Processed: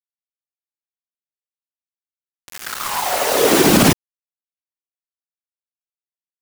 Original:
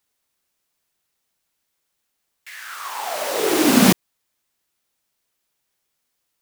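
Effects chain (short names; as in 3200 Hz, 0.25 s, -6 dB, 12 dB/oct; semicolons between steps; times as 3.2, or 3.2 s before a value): whisperiser; bit-crush 5-bit; maximiser +7 dB; gain -1 dB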